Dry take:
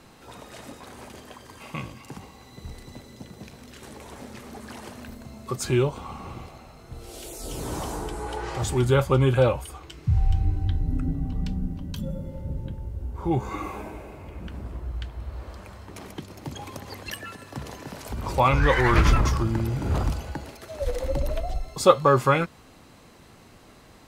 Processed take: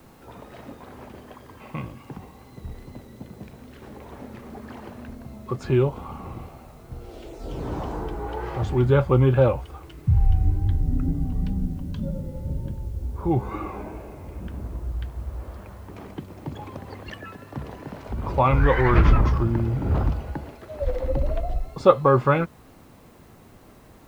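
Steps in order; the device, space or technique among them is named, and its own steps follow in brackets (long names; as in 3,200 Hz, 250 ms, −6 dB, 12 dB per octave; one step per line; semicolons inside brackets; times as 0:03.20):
cassette deck with a dirty head (head-to-tape spacing loss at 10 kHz 31 dB; tape wow and flutter; white noise bed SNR 38 dB)
level +3 dB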